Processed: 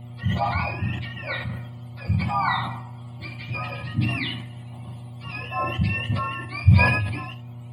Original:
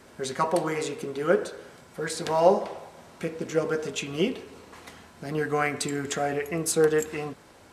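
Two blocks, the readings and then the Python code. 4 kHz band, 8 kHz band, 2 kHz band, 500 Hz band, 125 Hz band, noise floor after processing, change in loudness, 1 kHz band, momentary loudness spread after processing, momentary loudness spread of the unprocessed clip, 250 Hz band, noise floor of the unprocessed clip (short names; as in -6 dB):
+3.0 dB, under -20 dB, +6.5 dB, -12.5 dB, +15.0 dB, -39 dBFS, +2.5 dB, +2.5 dB, 18 LU, 21 LU, +0.5 dB, -53 dBFS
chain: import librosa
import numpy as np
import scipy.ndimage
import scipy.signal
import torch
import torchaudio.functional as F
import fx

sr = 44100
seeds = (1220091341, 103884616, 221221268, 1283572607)

y = fx.octave_mirror(x, sr, pivot_hz=880.0)
y = fx.dmg_buzz(y, sr, base_hz=120.0, harmonics=6, level_db=-42.0, tilt_db=-7, odd_only=False)
y = fx.fixed_phaser(y, sr, hz=1600.0, stages=6)
y = fx.room_early_taps(y, sr, ms=(41, 77), db=(-11.5, -13.5))
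y = fx.sustainer(y, sr, db_per_s=46.0)
y = y * librosa.db_to_amplitude(3.0)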